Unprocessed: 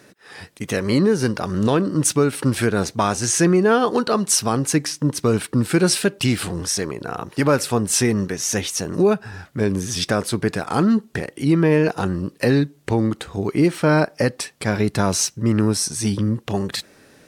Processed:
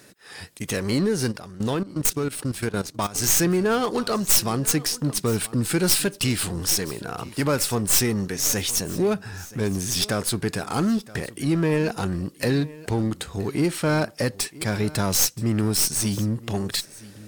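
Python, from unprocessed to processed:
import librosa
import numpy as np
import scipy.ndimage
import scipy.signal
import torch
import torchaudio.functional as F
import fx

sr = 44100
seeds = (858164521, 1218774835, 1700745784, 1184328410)

p1 = fx.tracing_dist(x, sr, depth_ms=0.067)
p2 = np.clip(p1, -10.0 ** (-24.0 / 20.0), 10.0 ** (-24.0 / 20.0))
p3 = p1 + F.gain(torch.from_numpy(p2), -4.0).numpy()
p4 = fx.low_shelf(p3, sr, hz=110.0, db=5.5)
p5 = p4 + fx.echo_single(p4, sr, ms=974, db=-19.5, dry=0)
p6 = fx.level_steps(p5, sr, step_db=16, at=(1.31, 3.14), fade=0.02)
p7 = fx.high_shelf(p6, sr, hz=3800.0, db=10.0)
p8 = fx.notch(p7, sr, hz=5900.0, q=21.0)
y = F.gain(torch.from_numpy(p8), -8.0).numpy()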